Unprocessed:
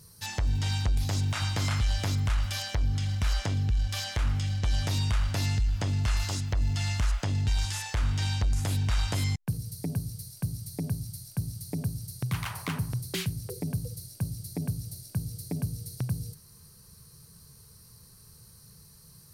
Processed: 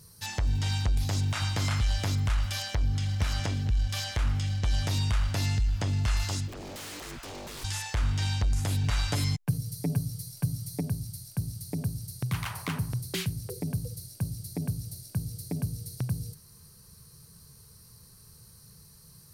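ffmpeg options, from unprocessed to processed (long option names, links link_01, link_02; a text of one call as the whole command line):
ffmpeg -i in.wav -filter_complex "[0:a]asplit=2[link_01][link_02];[link_02]afade=type=in:start_time=2.73:duration=0.01,afade=type=out:start_time=3.19:duration=0.01,aecho=0:1:460|920|1380:0.595662|0.148916|0.0372289[link_03];[link_01][link_03]amix=inputs=2:normalize=0,asplit=3[link_04][link_05][link_06];[link_04]afade=type=out:start_time=6.47:duration=0.02[link_07];[link_05]aeval=exprs='0.0158*(abs(mod(val(0)/0.0158+3,4)-2)-1)':channel_layout=same,afade=type=in:start_time=6.47:duration=0.02,afade=type=out:start_time=7.63:duration=0.02[link_08];[link_06]afade=type=in:start_time=7.63:duration=0.02[link_09];[link_07][link_08][link_09]amix=inputs=3:normalize=0,asettb=1/sr,asplit=3[link_10][link_11][link_12];[link_10]atrim=end=8.834[link_13];[link_11]atrim=start=8.83:end=10.81,asetpts=PTS-STARTPTS,afade=type=in:duration=0.004:curve=qsin,afade=type=out:start_time=1.976:duration=0.004:curve=qsin,aecho=1:1:6.9:0.68,atrim=end_sample=87318[link_14];[link_12]atrim=start=10.806[link_15];[link_13][link_14]acrossfade=duration=0.004:curve1=hsin:curve2=qsin[link_16];[link_16][link_15]acrossfade=duration=0.004:curve1=qsin:curve2=hsin" out.wav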